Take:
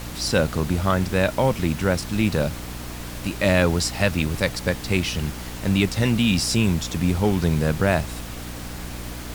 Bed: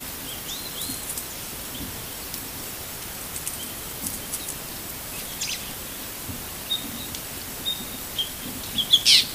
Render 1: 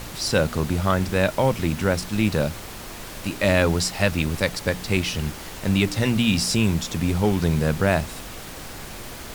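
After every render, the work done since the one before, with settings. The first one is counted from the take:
hum removal 60 Hz, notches 5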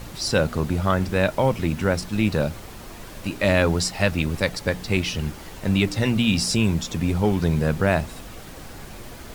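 broadband denoise 6 dB, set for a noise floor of −37 dBFS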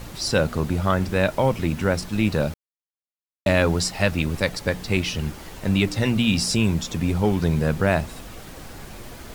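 0:02.54–0:03.46: silence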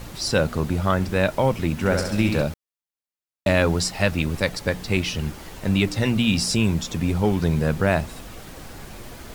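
0:01.74–0:02.42: flutter between parallel walls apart 11.5 metres, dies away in 0.84 s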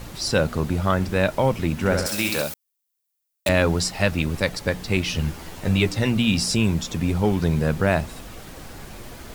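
0:02.06–0:03.49: RIAA equalisation recording
0:05.08–0:05.93: double-tracking delay 12 ms −5 dB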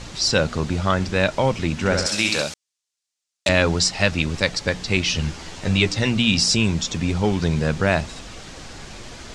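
low-pass filter 7,200 Hz 24 dB per octave
high-shelf EQ 2,400 Hz +8.5 dB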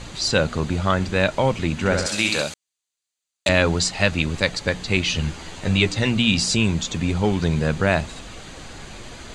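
notch filter 5,400 Hz, Q 5.1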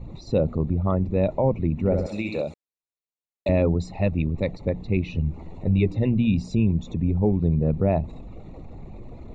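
spectral envelope exaggerated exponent 1.5
moving average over 28 samples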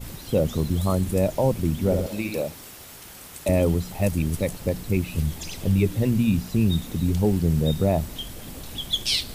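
mix in bed −8.5 dB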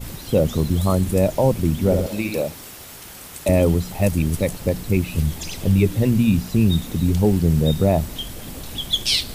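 level +4 dB

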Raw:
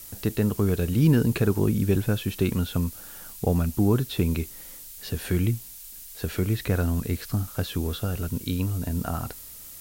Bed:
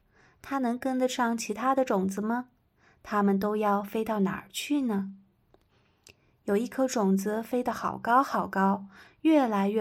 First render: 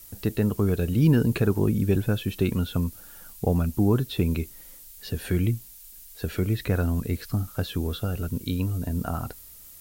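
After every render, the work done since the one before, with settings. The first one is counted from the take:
broadband denoise 6 dB, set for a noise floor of −43 dBFS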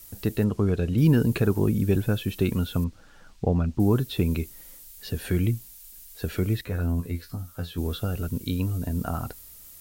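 0:00.44–0:00.98: high-frequency loss of the air 69 metres
0:02.84–0:03.80: high-frequency loss of the air 140 metres
0:06.61–0:07.78: tuned comb filter 85 Hz, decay 0.16 s, mix 100%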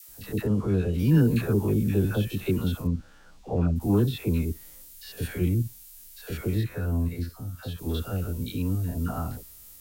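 spectrum averaged block by block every 50 ms
all-pass dispersion lows, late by 90 ms, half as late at 790 Hz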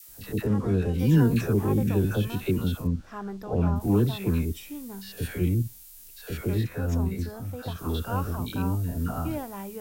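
mix in bed −11.5 dB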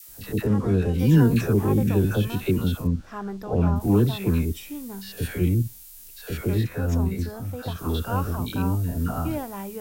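level +3 dB

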